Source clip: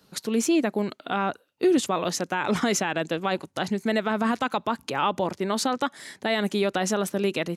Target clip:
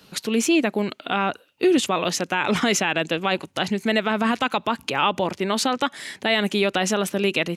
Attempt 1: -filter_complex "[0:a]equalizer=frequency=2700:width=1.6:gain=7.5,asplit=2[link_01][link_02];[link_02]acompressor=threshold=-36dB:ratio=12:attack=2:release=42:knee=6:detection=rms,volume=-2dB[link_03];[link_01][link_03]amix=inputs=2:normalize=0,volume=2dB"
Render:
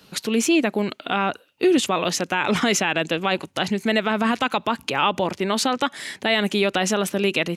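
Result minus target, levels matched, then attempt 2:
downward compressor: peak gain reduction −8 dB
-filter_complex "[0:a]equalizer=frequency=2700:width=1.6:gain=7.5,asplit=2[link_01][link_02];[link_02]acompressor=threshold=-45dB:ratio=12:attack=2:release=42:knee=6:detection=rms,volume=-2dB[link_03];[link_01][link_03]amix=inputs=2:normalize=0,volume=2dB"

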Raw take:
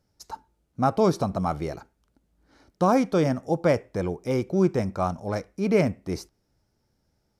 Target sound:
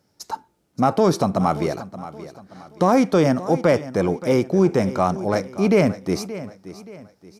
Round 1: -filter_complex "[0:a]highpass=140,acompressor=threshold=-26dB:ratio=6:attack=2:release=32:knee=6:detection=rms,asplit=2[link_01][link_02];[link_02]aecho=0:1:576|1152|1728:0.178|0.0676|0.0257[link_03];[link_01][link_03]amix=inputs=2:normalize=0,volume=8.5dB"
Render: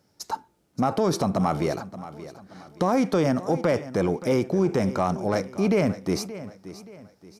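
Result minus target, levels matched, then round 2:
downward compressor: peak gain reduction +6 dB
-filter_complex "[0:a]highpass=140,acompressor=threshold=-18.5dB:ratio=6:attack=2:release=32:knee=6:detection=rms,asplit=2[link_01][link_02];[link_02]aecho=0:1:576|1152|1728:0.178|0.0676|0.0257[link_03];[link_01][link_03]amix=inputs=2:normalize=0,volume=8.5dB"

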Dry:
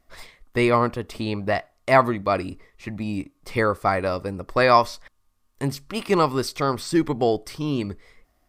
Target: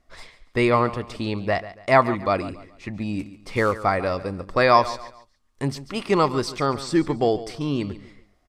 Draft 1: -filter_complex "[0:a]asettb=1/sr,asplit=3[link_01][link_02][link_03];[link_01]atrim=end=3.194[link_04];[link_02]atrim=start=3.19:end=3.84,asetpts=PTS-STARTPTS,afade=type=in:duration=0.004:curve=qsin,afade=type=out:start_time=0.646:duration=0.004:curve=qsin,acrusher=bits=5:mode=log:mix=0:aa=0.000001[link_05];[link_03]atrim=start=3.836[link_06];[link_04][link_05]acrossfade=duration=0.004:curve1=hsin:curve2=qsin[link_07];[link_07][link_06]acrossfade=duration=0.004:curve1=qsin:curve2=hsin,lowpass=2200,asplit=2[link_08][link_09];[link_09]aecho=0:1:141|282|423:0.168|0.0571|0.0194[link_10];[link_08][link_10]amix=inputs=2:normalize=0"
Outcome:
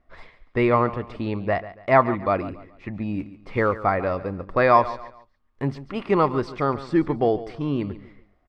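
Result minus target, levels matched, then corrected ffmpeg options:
8,000 Hz band −19.0 dB
-filter_complex "[0:a]asettb=1/sr,asplit=3[link_01][link_02][link_03];[link_01]atrim=end=3.194[link_04];[link_02]atrim=start=3.19:end=3.84,asetpts=PTS-STARTPTS,afade=type=in:duration=0.004:curve=qsin,afade=type=out:start_time=0.646:duration=0.004:curve=qsin,acrusher=bits=5:mode=log:mix=0:aa=0.000001[link_05];[link_03]atrim=start=3.836[link_06];[link_04][link_05]acrossfade=duration=0.004:curve1=hsin:curve2=qsin[link_07];[link_07][link_06]acrossfade=duration=0.004:curve1=qsin:curve2=hsin,lowpass=8300,asplit=2[link_08][link_09];[link_09]aecho=0:1:141|282|423:0.168|0.0571|0.0194[link_10];[link_08][link_10]amix=inputs=2:normalize=0"

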